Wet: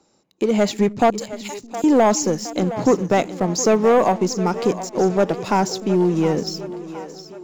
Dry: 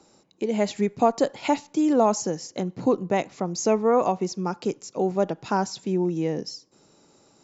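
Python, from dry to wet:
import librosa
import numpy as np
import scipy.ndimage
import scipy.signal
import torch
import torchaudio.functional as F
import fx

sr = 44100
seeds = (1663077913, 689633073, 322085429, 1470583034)

y = fx.differentiator(x, sr, at=(1.1, 1.84))
y = fx.leveller(y, sr, passes=2)
y = fx.echo_split(y, sr, split_hz=300.0, low_ms=308, high_ms=715, feedback_pct=52, wet_db=-13.0)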